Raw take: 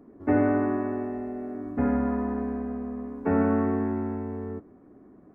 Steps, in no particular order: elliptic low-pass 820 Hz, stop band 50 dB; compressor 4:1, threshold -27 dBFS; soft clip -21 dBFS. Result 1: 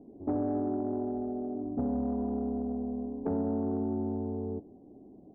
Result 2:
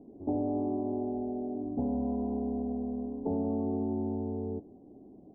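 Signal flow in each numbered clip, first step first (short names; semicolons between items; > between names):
elliptic low-pass > compressor > soft clip; compressor > soft clip > elliptic low-pass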